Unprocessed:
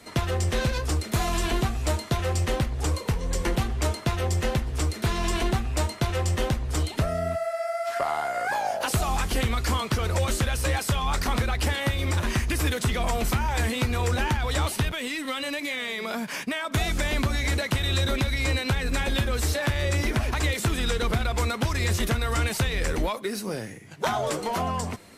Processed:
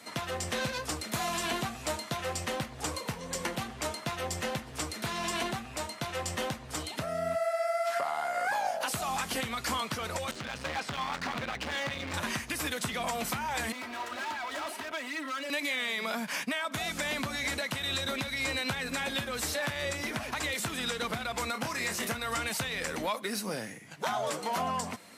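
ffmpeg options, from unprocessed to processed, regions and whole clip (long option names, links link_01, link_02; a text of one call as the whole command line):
ffmpeg -i in.wav -filter_complex "[0:a]asettb=1/sr,asplit=3[link_01][link_02][link_03];[link_01]atrim=end=10.314[link_04];[link_02]atrim=start=10.31:end=12.14,asetpts=PTS-STARTPTS,afade=type=in:duration=0.004:curve=qsin,afade=type=out:start_time=1.826:duration=0.004:curve=qsin,lowpass=3600,asoftclip=type=hard:threshold=-27.5dB[link_05];[link_03]atrim=start=12.136[link_06];[link_04][link_05]acrossfade=duration=0.004:curve1=hsin:curve2=qsin[link_07];[link_07][link_06]acrossfade=duration=0.004:curve1=qsin:curve2=hsin,asettb=1/sr,asplit=3[link_08][link_09][link_10];[link_08]atrim=end=13.724[link_11];[link_09]atrim=start=13.72:end=15.5,asetpts=PTS-STARTPTS,afade=type=in:duration=0.004:curve=qsin,afade=type=out:start_time=1.776:duration=0.004:curve=qsin,acrossover=split=270 2300:gain=0.1 1 0.224[link_12][link_13][link_14];[link_12][link_13][link_14]amix=inputs=3:normalize=0,volume=35dB,asoftclip=hard,volume=-35dB,aecho=1:1:3.1:0.69,atrim=end_sample=78498[link_15];[link_10]atrim=start=15.496[link_16];[link_11][link_15]acrossfade=duration=0.004:curve1=hsin:curve2=qsin[link_17];[link_17][link_16]acrossfade=duration=0.004:curve1=qsin:curve2=hsin,asettb=1/sr,asplit=3[link_18][link_19][link_20];[link_18]atrim=end=21.524[link_21];[link_19]atrim=start=21.52:end=22.13,asetpts=PTS-STARTPTS,afade=type=in:duration=0.004:curve=qsin,afade=type=out:start_time=0.606:duration=0.004:curve=qsin,highpass=frequency=120:poles=1,equalizer=frequency=3500:width=3.7:gain=-6.5,asplit=2[link_22][link_23];[link_23]adelay=28,volume=-6dB[link_24];[link_22][link_24]amix=inputs=2:normalize=0,atrim=end_sample=26901[link_25];[link_20]atrim=start=22.126[link_26];[link_21][link_25]acrossfade=duration=0.004:curve1=hsin:curve2=qsin[link_27];[link_27][link_26]acrossfade=duration=0.004:curve1=qsin:curve2=hsin,highpass=200,equalizer=frequency=380:width_type=o:width=0.68:gain=-8,alimiter=limit=-21dB:level=0:latency=1:release=447" out.wav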